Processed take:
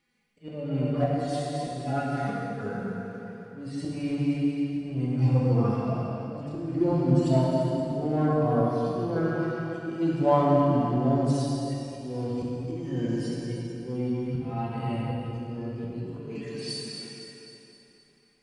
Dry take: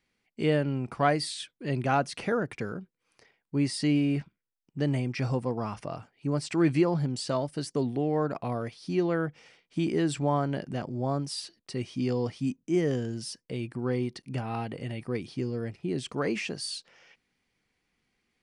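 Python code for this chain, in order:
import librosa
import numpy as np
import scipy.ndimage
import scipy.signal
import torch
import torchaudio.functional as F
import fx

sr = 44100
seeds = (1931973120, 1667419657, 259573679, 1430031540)

p1 = fx.hpss_only(x, sr, part='harmonic')
p2 = fx.echo_split(p1, sr, split_hz=510.0, low_ms=179, high_ms=264, feedback_pct=52, wet_db=-10.5)
p3 = np.clip(p2, -10.0 ** (-29.5 / 20.0), 10.0 ** (-29.5 / 20.0))
p4 = p2 + (p3 * librosa.db_to_amplitude(-9.0))
p5 = fx.auto_swell(p4, sr, attack_ms=495.0)
y = fx.rev_plate(p5, sr, seeds[0], rt60_s=2.8, hf_ratio=0.8, predelay_ms=0, drr_db=-4.5)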